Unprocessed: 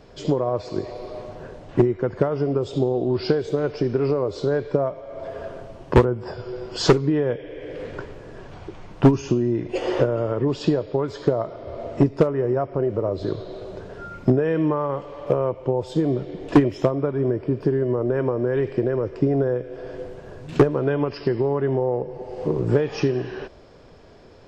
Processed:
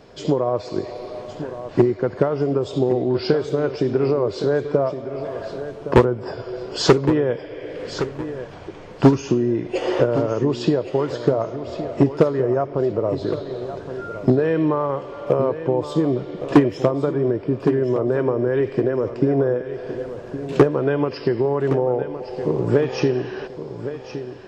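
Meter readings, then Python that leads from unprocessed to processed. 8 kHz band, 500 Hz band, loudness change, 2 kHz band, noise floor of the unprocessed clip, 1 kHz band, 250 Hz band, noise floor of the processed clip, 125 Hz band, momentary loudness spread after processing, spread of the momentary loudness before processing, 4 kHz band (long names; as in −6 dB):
can't be measured, +2.5 dB, +1.5 dB, +3.0 dB, −43 dBFS, +2.5 dB, +2.0 dB, −37 dBFS, +0.5 dB, 13 LU, 17 LU, +3.0 dB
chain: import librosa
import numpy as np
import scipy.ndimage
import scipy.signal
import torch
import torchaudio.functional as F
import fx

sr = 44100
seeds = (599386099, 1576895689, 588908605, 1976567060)

p1 = fx.low_shelf(x, sr, hz=68.0, db=-12.0)
p2 = p1 + fx.echo_feedback(p1, sr, ms=1115, feedback_pct=34, wet_db=-11.5, dry=0)
y = F.gain(torch.from_numpy(p2), 2.5).numpy()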